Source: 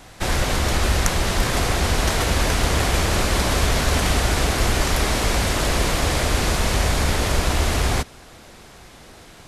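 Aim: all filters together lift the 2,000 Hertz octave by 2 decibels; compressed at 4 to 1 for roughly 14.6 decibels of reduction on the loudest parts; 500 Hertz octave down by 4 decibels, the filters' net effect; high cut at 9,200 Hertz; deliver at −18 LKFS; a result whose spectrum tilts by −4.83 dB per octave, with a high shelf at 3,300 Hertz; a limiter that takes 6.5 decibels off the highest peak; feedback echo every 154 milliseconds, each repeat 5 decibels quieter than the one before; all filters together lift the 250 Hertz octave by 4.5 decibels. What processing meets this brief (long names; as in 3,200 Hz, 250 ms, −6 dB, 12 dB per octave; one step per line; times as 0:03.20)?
low-pass filter 9,200 Hz
parametric band 250 Hz +8 dB
parametric band 500 Hz −8 dB
parametric band 2,000 Hz +5 dB
high-shelf EQ 3,300 Hz −7 dB
downward compressor 4 to 1, threshold −33 dBFS
brickwall limiter −25.5 dBFS
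repeating echo 154 ms, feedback 56%, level −5 dB
level +16.5 dB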